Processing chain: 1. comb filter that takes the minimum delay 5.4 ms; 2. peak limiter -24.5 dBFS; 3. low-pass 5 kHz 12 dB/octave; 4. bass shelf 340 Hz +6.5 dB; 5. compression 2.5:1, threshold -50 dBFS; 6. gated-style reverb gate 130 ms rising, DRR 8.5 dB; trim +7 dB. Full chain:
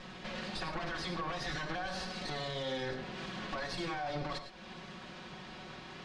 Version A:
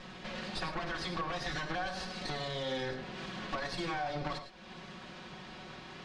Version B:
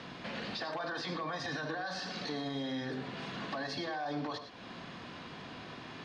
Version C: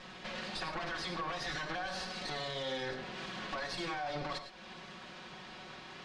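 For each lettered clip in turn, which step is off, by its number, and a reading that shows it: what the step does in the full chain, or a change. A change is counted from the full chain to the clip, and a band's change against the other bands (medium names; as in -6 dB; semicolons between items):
2, crest factor change +2.5 dB; 1, 250 Hz band +3.5 dB; 4, 125 Hz band -4.5 dB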